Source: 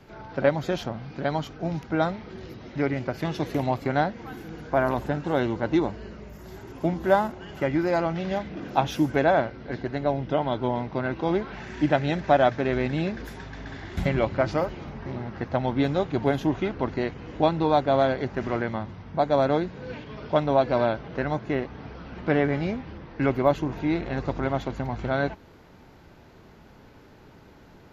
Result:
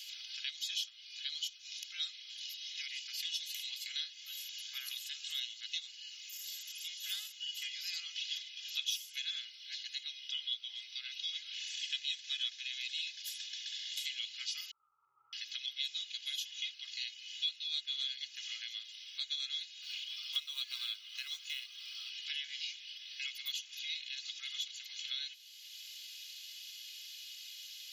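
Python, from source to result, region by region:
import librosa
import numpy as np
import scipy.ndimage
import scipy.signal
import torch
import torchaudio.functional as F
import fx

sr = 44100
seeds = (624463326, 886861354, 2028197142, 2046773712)

y = fx.chain(x, sr, fx.brickwall_lowpass(high_hz=1400.0),
    fx.env_flatten(amount_pct=70), at=(14.71, 15.33))
y = fx.chain(y, sr, fx.notch(hz=1800.0, q=19.0),
    fx.quant_float(bits=6),
    fx.peak_eq(hz=1100.0, db=14.5, octaves=0.51), at=(19.82, 22.1))
y = scipy.signal.sosfilt(scipy.signal.ellip(4, 1.0, 80, 3000.0, 'highpass', fs=sr, output='sos'), y)
y = y + 0.72 * np.pad(y, (int(2.4 * sr / 1000.0), 0))[:len(y)]
y = fx.band_squash(y, sr, depth_pct=70)
y = F.gain(torch.from_numpy(y), 5.5).numpy()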